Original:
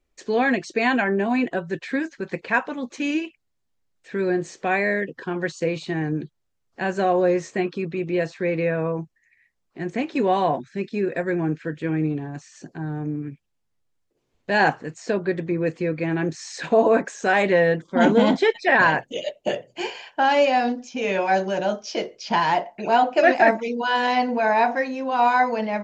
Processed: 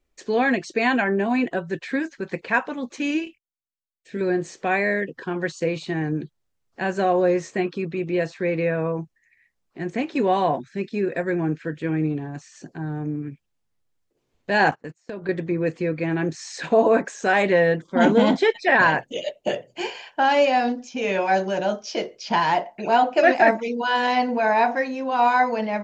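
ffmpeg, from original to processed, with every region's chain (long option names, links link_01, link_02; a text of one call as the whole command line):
ffmpeg -i in.wav -filter_complex "[0:a]asettb=1/sr,asplit=3[link_01][link_02][link_03];[link_01]atrim=end=3.244[link_04];[link_02]atrim=start=3.24:end=4.21,asetpts=PTS-STARTPTS,afade=type=in:duration=0.004:curve=qsin,afade=type=out:start_time=0.966:duration=0.004:curve=qsin,agate=range=-28dB:threshold=-59dB:ratio=16:release=100:detection=peak,equalizer=frequency=1100:width=0.96:gain=-14,asplit=2[link_05][link_06];[link_06]adelay=24,volume=-5dB[link_07];[link_05][link_07]amix=inputs=2:normalize=0,atrim=end_sample=42777[link_08];[link_03]atrim=start=4.206[link_09];[link_04][link_08]acrossfade=duration=0.004:curve1=hsin:curve2=qsin[link_10];[link_10][link_09]acrossfade=duration=0.004:curve1=qsin:curve2=hsin,asettb=1/sr,asplit=3[link_11][link_12][link_13];[link_11]atrim=end=14.714[link_14];[link_12]atrim=start=14.71:end=15.29,asetpts=PTS-STARTPTS,afade=type=in:duration=0.004:curve=qsin,afade=type=out:start_time=0.576:duration=0.004:curve=qsin,acompressor=threshold=-28dB:ratio=8:attack=3.2:release=140:knee=1:detection=peak,agate=range=-24dB:threshold=-37dB:ratio=16:release=100:detection=peak[link_15];[link_13]atrim=start=15.286[link_16];[link_14][link_15]acrossfade=duration=0.004:curve1=hsin:curve2=qsin[link_17];[link_17][link_16]acrossfade=duration=0.004:curve1=qsin:curve2=hsin" out.wav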